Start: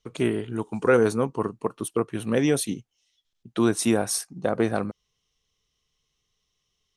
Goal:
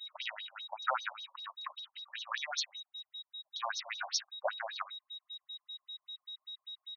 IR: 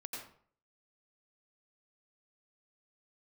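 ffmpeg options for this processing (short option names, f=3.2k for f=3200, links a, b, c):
-filter_complex "[0:a]aeval=exprs='val(0)+0.00562*sin(2*PI*3800*n/s)':c=same,asplit=2[a][b];[b]highpass=f=720:p=1,volume=13dB,asoftclip=type=tanh:threshold=-8dB[c];[a][c]amix=inputs=2:normalize=0,lowpass=f=6.7k:p=1,volume=-6dB,afftfilt=real='re*between(b*sr/1024,760*pow(4800/760,0.5+0.5*sin(2*PI*5.1*pts/sr))/1.41,760*pow(4800/760,0.5+0.5*sin(2*PI*5.1*pts/sr))*1.41)':imag='im*between(b*sr/1024,760*pow(4800/760,0.5+0.5*sin(2*PI*5.1*pts/sr))/1.41,760*pow(4800/760,0.5+0.5*sin(2*PI*5.1*pts/sr))*1.41)':win_size=1024:overlap=0.75,volume=-3.5dB"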